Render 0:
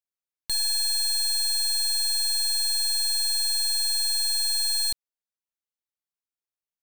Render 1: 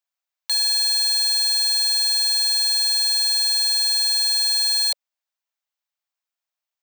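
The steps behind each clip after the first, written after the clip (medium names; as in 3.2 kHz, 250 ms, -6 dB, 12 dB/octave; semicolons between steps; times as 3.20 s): steep high-pass 560 Hz 72 dB/octave; peaking EQ 11 kHz -10.5 dB 0.59 oct; trim +7 dB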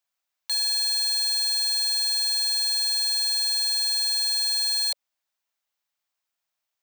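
peak limiter -22.5 dBFS, peak gain reduction 9 dB; trim +4 dB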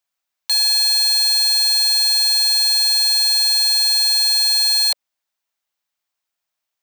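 waveshaping leveller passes 2; trim +6 dB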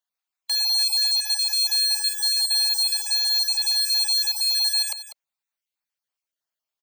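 random holes in the spectrogram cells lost 29%; delay 196 ms -12.5 dB; trim -6 dB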